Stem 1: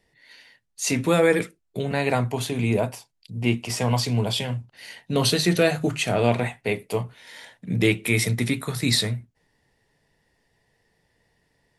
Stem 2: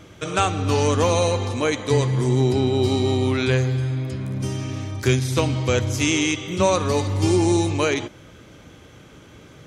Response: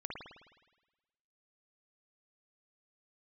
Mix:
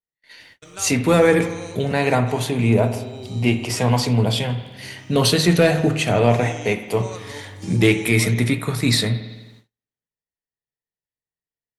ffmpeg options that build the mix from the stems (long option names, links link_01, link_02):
-filter_complex "[0:a]acontrast=85,volume=-4.5dB,asplit=2[link_01][link_02];[link_02]volume=-5.5dB[link_03];[1:a]highshelf=frequency=3800:gain=8,acrusher=bits=7:mix=0:aa=0.5,adelay=400,volume=-17dB[link_04];[2:a]atrim=start_sample=2205[link_05];[link_03][link_05]afir=irnorm=-1:irlink=0[link_06];[link_01][link_04][link_06]amix=inputs=3:normalize=0,agate=range=-38dB:threshold=-47dB:ratio=16:detection=peak,adynamicequalizer=threshold=0.02:dfrequency=2400:dqfactor=0.7:tfrequency=2400:tqfactor=0.7:attack=5:release=100:ratio=0.375:range=2:mode=cutabove:tftype=highshelf"